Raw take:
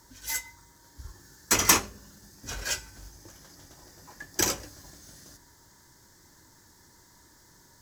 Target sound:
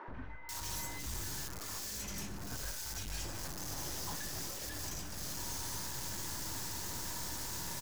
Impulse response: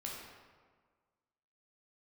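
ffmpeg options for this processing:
-filter_complex "[0:a]aeval=exprs='val(0)+0.5*0.0282*sgn(val(0))':c=same,acompressor=threshold=-35dB:ratio=10,aeval=exprs='(tanh(112*val(0)+0.65)-tanh(0.65))/112':c=same,acrossover=split=340|1800[a][b][c];[a]adelay=80[d];[c]adelay=490[e];[d][b][e]amix=inputs=3:normalize=0,volume=1.5dB"

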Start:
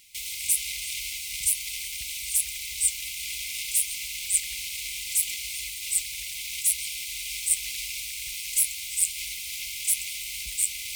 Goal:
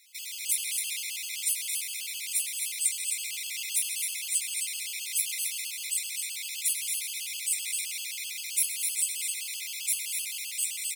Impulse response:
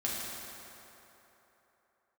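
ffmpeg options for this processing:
-filter_complex "[0:a]highpass=f=720:w=0.5412,highpass=f=720:w=1.3066,flanger=delay=3.2:depth=7.9:regen=-45:speed=1.5:shape=triangular,aecho=1:1:224.5|265.3:0.355|0.447,asplit=2[a][b];[1:a]atrim=start_sample=2205,asetrate=33957,aresample=44100[c];[b][c]afir=irnorm=-1:irlink=0,volume=-8dB[d];[a][d]amix=inputs=2:normalize=0,afftfilt=real='re*gt(sin(2*PI*7.7*pts/sr)*(1-2*mod(floor(b*sr/1024/860),2)),0)':imag='im*gt(sin(2*PI*7.7*pts/sr)*(1-2*mod(floor(b*sr/1024/860),2)),0)':win_size=1024:overlap=0.75"

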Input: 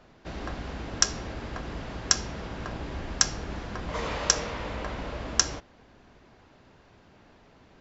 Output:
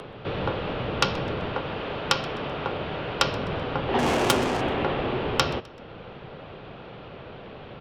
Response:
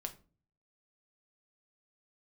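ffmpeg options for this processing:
-filter_complex "[0:a]asettb=1/sr,asplit=3[a][b][c];[a]atrim=end=1.524[d];[b]atrim=start=1.52:end=3.19,asetpts=PTS-STARTPTS,afade=t=in:d=0.004:c=qsin,afade=t=out:st=1.666:d=0.004:c=qsin,lowshelf=f=310:g=-10.5[e];[c]atrim=start=3.186[f];[d][e]acrossfade=d=0.004:c1=hsin:c2=qsin[g];[g][f]acrossfade=d=0.004:c1=qsin:c2=hsin,highpass=f=280:t=q:w=0.5412,highpass=f=280:t=q:w=1.307,lowpass=f=3.3k:t=q:w=0.5176,lowpass=f=3.3k:t=q:w=0.7071,lowpass=f=3.3k:t=q:w=1.932,afreqshift=-220,asplit=2[h][i];[i]acompressor=mode=upward:threshold=-40dB:ratio=2.5,volume=1dB[j];[h][j]amix=inputs=2:normalize=0,equalizer=f=125:t=o:w=1:g=7,equalizer=f=500:t=o:w=1:g=6,equalizer=f=2k:t=o:w=1:g=-8,asplit=3[k][l][m];[k]afade=t=out:st=3.98:d=0.02[n];[l]adynamicsmooth=sensitivity=7:basefreq=1.5k,afade=t=in:st=3.98:d=0.02,afade=t=out:st=4.6:d=0.02[o];[m]afade=t=in:st=4.6:d=0.02[p];[n][o][p]amix=inputs=3:normalize=0,asoftclip=type=tanh:threshold=-14.5dB,asplit=2[q][r];[r]aecho=0:1:128|256|384:0.0794|0.0334|0.014[s];[q][s]amix=inputs=2:normalize=0,crystalizer=i=7:c=0,volume=1dB"

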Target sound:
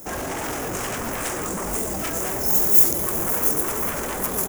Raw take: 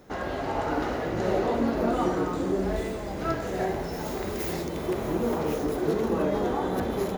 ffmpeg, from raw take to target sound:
-filter_complex "[0:a]flanger=delay=15:depth=4.6:speed=1.3,aeval=exprs='0.168*sin(PI/2*5.62*val(0)/0.168)':c=same,atempo=1.6,aexciter=amount=9.8:drive=6.7:freq=6.1k,asplit=2[a][b];[b]aecho=0:1:1058:0.168[c];[a][c]amix=inputs=2:normalize=0,volume=-10dB"

